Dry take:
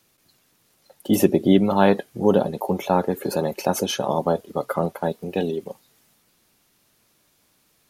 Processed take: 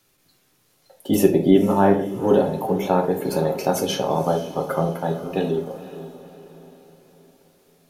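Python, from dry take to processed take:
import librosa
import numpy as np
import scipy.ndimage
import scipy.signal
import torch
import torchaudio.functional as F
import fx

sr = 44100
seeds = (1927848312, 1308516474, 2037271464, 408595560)

y = fx.lowpass(x, sr, hz=fx.line((1.5, 3000.0), (2.07, 1100.0)), slope=12, at=(1.5, 2.07), fade=0.02)
y = fx.echo_diffused(y, sr, ms=509, feedback_pct=45, wet_db=-14.0)
y = fx.room_shoebox(y, sr, seeds[0], volume_m3=45.0, walls='mixed', distance_m=0.43)
y = F.gain(torch.from_numpy(y), -1.5).numpy()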